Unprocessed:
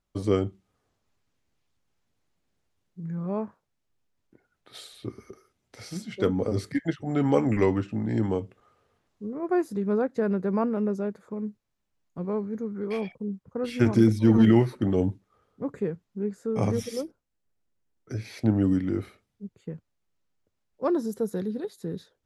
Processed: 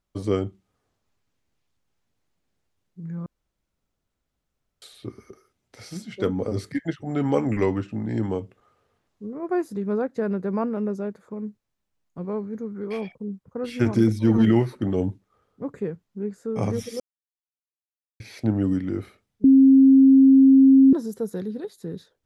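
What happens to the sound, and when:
0:03.26–0:04.82: fill with room tone
0:17.00–0:18.20: silence
0:19.44–0:20.93: beep over 268 Hz −9.5 dBFS

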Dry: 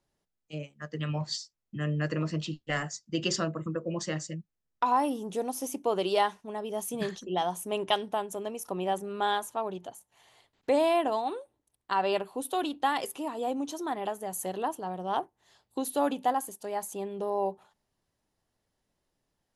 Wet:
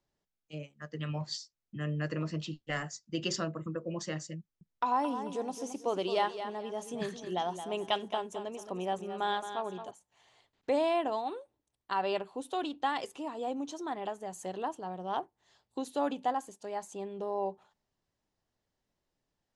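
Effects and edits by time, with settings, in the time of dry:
0:04.39–0:09.91: repeating echo 220 ms, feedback 29%, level −10 dB
whole clip: low-pass filter 7,900 Hz 24 dB per octave; level −4 dB

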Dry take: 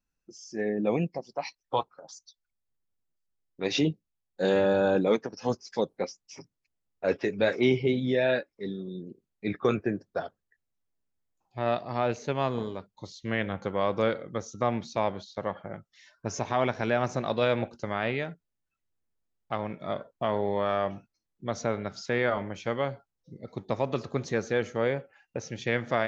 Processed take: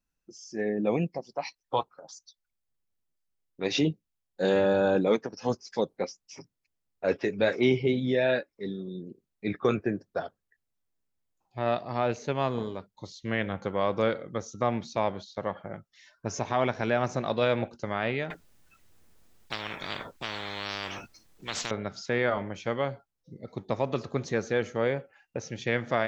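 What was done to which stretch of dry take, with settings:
0:18.30–0:21.71: every bin compressed towards the loudest bin 10 to 1

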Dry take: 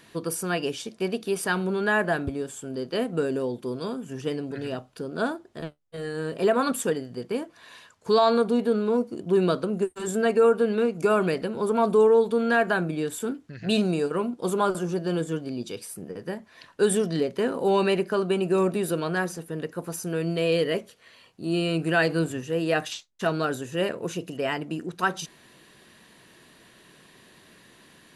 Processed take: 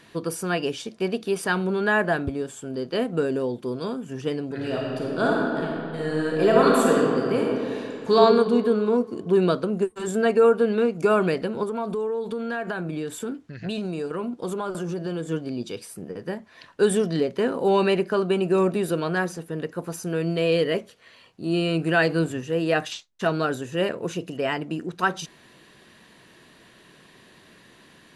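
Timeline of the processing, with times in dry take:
0:04.52–0:08.16: thrown reverb, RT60 2.5 s, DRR −3 dB
0:11.63–0:15.28: downward compressor, threshold −27 dBFS
whole clip: high-shelf EQ 9,200 Hz −9.5 dB; level +2 dB

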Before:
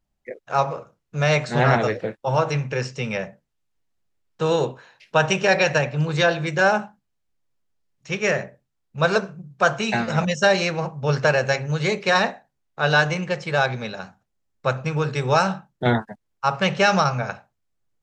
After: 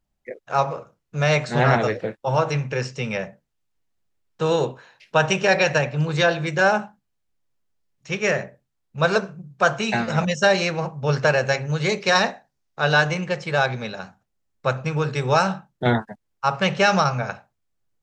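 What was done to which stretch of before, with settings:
0:11.89–0:12.84: parametric band 5,400 Hz +6 dB

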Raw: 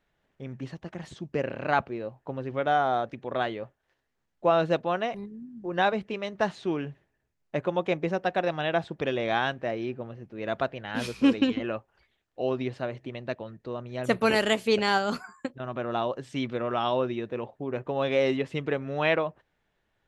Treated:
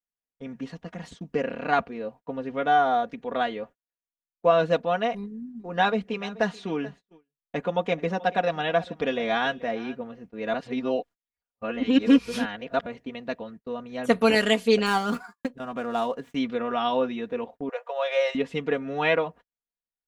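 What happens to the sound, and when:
0:05.16–0:10.02: single-tap delay 433 ms −19.5 dB
0:10.54–0:12.86: reverse
0:14.86–0:16.35: running median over 9 samples
0:17.69–0:18.35: Butterworth high-pass 490 Hz 72 dB per octave
whole clip: noise gate −45 dBFS, range −32 dB; comb filter 4.2 ms, depth 77%

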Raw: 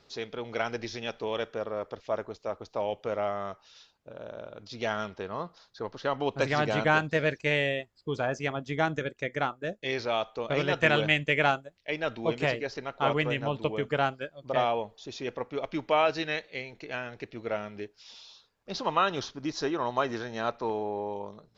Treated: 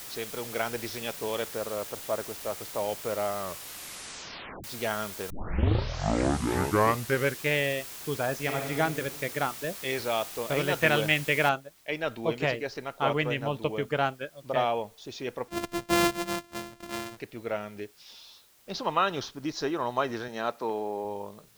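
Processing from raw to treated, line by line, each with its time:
0:03.40: tape stop 1.24 s
0:05.30: tape start 2.17 s
0:08.34–0:08.74: thrown reverb, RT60 1.6 s, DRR 2 dB
0:11.49: noise floor change −42 dB −61 dB
0:15.48–0:17.17: samples sorted by size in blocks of 128 samples
0:20.28–0:21.05: high-pass filter 160 Hz

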